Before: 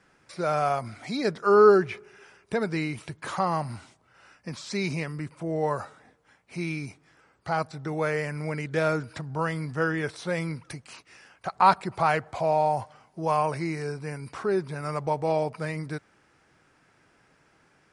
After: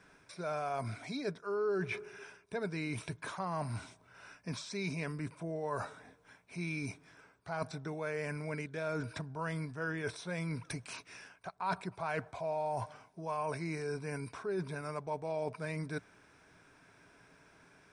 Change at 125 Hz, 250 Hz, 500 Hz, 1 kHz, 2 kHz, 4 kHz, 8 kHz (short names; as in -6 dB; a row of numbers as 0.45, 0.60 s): -8.0, -9.5, -12.5, -14.0, -8.5, -8.0, -5.0 dB